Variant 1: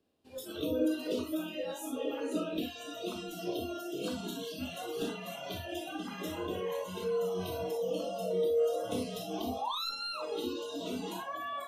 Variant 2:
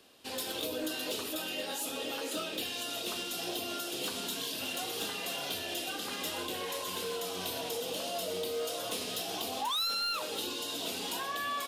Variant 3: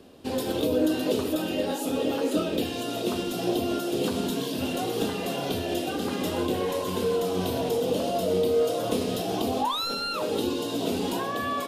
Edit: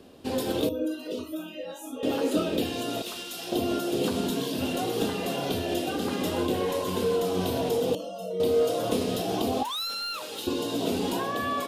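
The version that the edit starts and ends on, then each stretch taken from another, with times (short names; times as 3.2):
3
0.69–2.03 from 1
3.02–3.52 from 2
7.95–8.4 from 1
9.63–10.47 from 2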